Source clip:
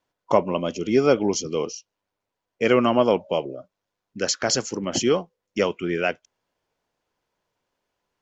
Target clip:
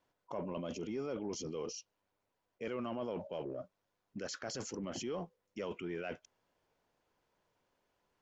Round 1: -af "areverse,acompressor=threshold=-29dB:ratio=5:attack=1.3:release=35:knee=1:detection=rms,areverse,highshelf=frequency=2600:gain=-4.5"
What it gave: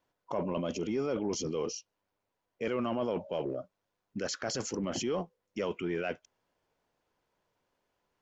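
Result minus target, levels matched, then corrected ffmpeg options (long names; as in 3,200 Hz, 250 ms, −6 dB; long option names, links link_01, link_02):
downward compressor: peak gain reduction −7 dB
-af "areverse,acompressor=threshold=-38dB:ratio=5:attack=1.3:release=35:knee=1:detection=rms,areverse,highshelf=frequency=2600:gain=-4.5"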